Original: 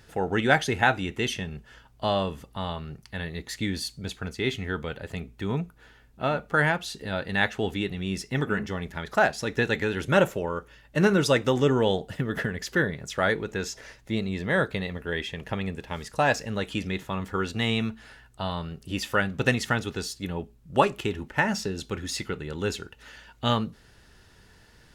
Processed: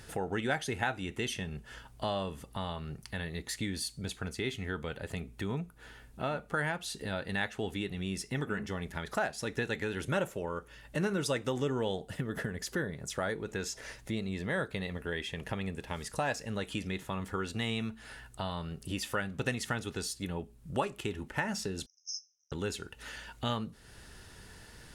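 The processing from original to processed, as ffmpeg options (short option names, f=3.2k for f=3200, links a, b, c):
-filter_complex "[0:a]asettb=1/sr,asplit=3[a][b][c];[a]atrim=end=12.274[d];[b]atrim=start=12.27:end=13.46,asetpts=PTS-STARTPTS,afade=t=in:d=0.004:c=qsin,afade=t=out:st=1.186:d=0.004:c=qsin,equalizer=f=2.5k:w=0.92:g=-4.5[e];[c]atrim=start=13.456[f];[d][e]acrossfade=d=0.004:c1=hsin:c2=qsin[g];[g][f]acrossfade=d=0.004:c1=qsin:c2=hsin,asettb=1/sr,asplit=3[h][i][j];[h]atrim=end=21.864[k];[i]atrim=start=21.86:end=22.52,asetpts=PTS-STARTPTS,afade=t=in:d=0.004:c=qsin,afade=t=out:st=0.656:d=0.004:c=qsin,asuperpass=centerf=5700:order=20:qfactor=4.2[l];[j]atrim=start=22.516[m];[k][l]acrossfade=d=0.004:c1=hsin:c2=qsin[n];[n][m]acrossfade=d=0.004:c1=qsin:c2=hsin,equalizer=f=9.5k:w=1.6:g=7.5,acompressor=threshold=-43dB:ratio=2,volume=3dB"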